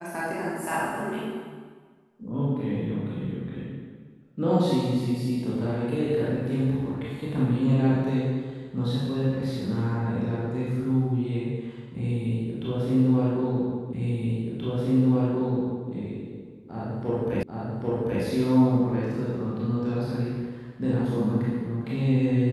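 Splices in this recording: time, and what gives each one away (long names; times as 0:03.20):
0:13.93: the same again, the last 1.98 s
0:17.43: the same again, the last 0.79 s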